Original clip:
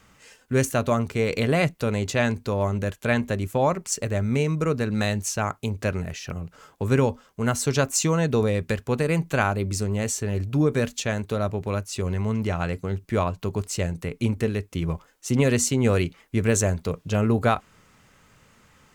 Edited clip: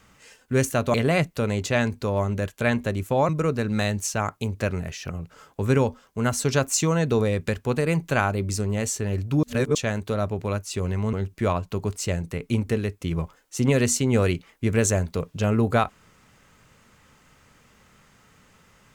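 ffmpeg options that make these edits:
ffmpeg -i in.wav -filter_complex "[0:a]asplit=6[link_01][link_02][link_03][link_04][link_05][link_06];[link_01]atrim=end=0.942[link_07];[link_02]atrim=start=1.378:end=3.732[link_08];[link_03]atrim=start=4.508:end=10.652[link_09];[link_04]atrim=start=10.648:end=10.972,asetpts=PTS-STARTPTS,areverse[link_10];[link_05]atrim=start=10.968:end=12.352[link_11];[link_06]atrim=start=12.838[link_12];[link_07][link_08]acrossfade=duration=0.004:curve1=hsin:curve2=hsin[link_13];[link_13][link_09]acrossfade=duration=0.004:curve1=hsin:curve2=hsin[link_14];[link_14][link_10]acrossfade=duration=0.004:curve1=hsin:curve2=hsin[link_15];[link_15][link_11]acrossfade=duration=0.004:curve1=hsin:curve2=hsin[link_16];[link_16][link_12]acrossfade=duration=0.004:curve1=hsin:curve2=hsin" out.wav

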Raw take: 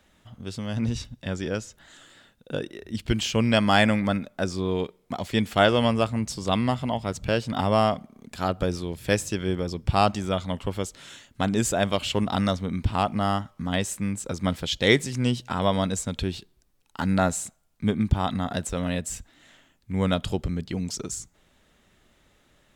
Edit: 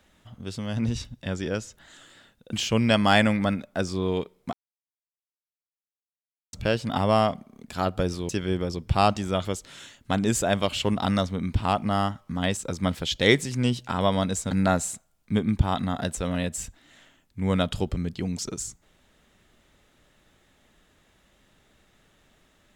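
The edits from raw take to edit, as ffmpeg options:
ffmpeg -i in.wav -filter_complex "[0:a]asplit=8[link_01][link_02][link_03][link_04][link_05][link_06][link_07][link_08];[link_01]atrim=end=2.532[link_09];[link_02]atrim=start=3.158:end=5.16,asetpts=PTS-STARTPTS,afade=type=out:start_time=1.998:duration=0.004:curve=hsin[link_10];[link_03]atrim=start=5.16:end=7.16,asetpts=PTS-STARTPTS,volume=0[link_11];[link_04]atrim=start=7.16:end=8.922,asetpts=PTS-STARTPTS,afade=type=in:duration=0.004:curve=hsin[link_12];[link_05]atrim=start=9.268:end=10.432[link_13];[link_06]atrim=start=10.748:end=13.872[link_14];[link_07]atrim=start=14.178:end=16.122[link_15];[link_08]atrim=start=17.028[link_16];[link_10][link_11][link_12]concat=n=3:v=0:a=1[link_17];[link_09][link_17]acrossfade=duration=0.004:curve1=hsin:curve2=hsin[link_18];[link_18][link_13]acrossfade=duration=0.004:curve1=hsin:curve2=hsin[link_19];[link_19][link_14]acrossfade=duration=0.004:curve1=hsin:curve2=hsin[link_20];[link_20][link_15]acrossfade=duration=0.004:curve1=hsin:curve2=hsin[link_21];[link_21][link_16]acrossfade=duration=0.004:curve1=hsin:curve2=hsin" out.wav

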